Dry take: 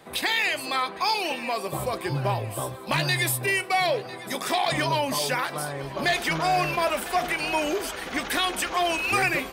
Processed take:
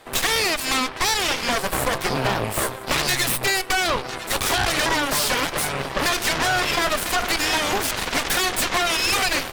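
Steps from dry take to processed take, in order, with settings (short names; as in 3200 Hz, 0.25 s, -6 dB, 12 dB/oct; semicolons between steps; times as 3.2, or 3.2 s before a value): bell 190 Hz -9.5 dB 1.1 oct; compressor 6:1, threshold -26 dBFS, peak gain reduction 7 dB; added harmonics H 8 -7 dB, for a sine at -15.5 dBFS; gain +3.5 dB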